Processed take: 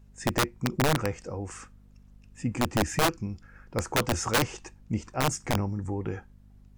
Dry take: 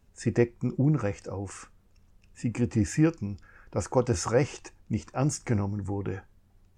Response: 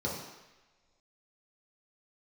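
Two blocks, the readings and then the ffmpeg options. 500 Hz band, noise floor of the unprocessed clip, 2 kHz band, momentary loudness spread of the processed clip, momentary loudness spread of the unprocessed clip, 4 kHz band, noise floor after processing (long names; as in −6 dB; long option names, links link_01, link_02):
−2.0 dB, −62 dBFS, +7.5 dB, 12 LU, 12 LU, +12.0 dB, −55 dBFS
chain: -af "aeval=exprs='(mod(7.08*val(0)+1,2)-1)/7.08':channel_layout=same,aeval=exprs='val(0)+0.00224*(sin(2*PI*50*n/s)+sin(2*PI*2*50*n/s)/2+sin(2*PI*3*50*n/s)/3+sin(2*PI*4*50*n/s)/4+sin(2*PI*5*50*n/s)/5)':channel_layout=same"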